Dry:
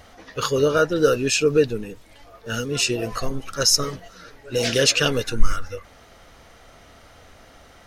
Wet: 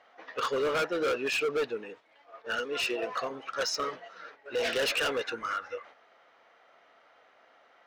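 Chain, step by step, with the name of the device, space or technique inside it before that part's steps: 2.56–3.10 s: high-pass 210 Hz; walkie-talkie (band-pass 560–2500 Hz; hard clipper -25.5 dBFS, distortion -6 dB; gate -50 dBFS, range -8 dB)

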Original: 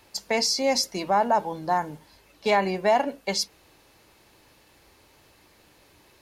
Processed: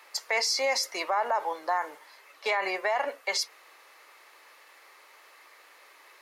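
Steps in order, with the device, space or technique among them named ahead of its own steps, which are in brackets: laptop speaker (high-pass 450 Hz 24 dB/octave; peaking EQ 1.2 kHz +10 dB 0.44 oct; peaking EQ 2 kHz +9.5 dB 0.48 oct; peak limiter -18 dBFS, peak gain reduction 11 dB)

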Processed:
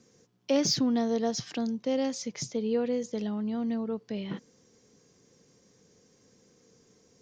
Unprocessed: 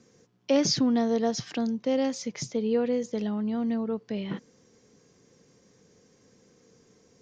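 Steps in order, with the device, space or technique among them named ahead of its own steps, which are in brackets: exciter from parts (in parallel at -6.5 dB: high-pass 2.7 kHz 12 dB/octave + saturation -27 dBFS, distortion -10 dB); on the sum: trim -2.5 dB

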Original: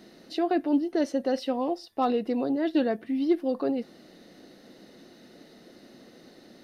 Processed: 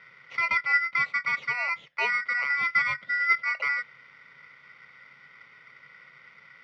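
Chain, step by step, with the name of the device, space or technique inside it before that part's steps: ring modulator pedal into a guitar cabinet (polarity switched at an audio rate 1.7 kHz; cabinet simulation 110–3700 Hz, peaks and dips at 140 Hz +10 dB, 320 Hz -8 dB, 520 Hz +9 dB, 1.2 kHz -4 dB, 2 kHz +6 dB); trim -2.5 dB

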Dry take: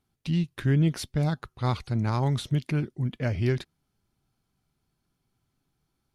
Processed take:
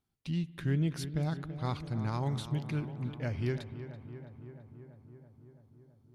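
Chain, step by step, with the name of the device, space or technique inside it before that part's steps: dub delay into a spring reverb (filtered feedback delay 332 ms, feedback 74%, low-pass 2.4 kHz, level -11.5 dB; spring tank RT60 2.1 s, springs 59 ms, chirp 45 ms, DRR 18.5 dB); trim -7.5 dB

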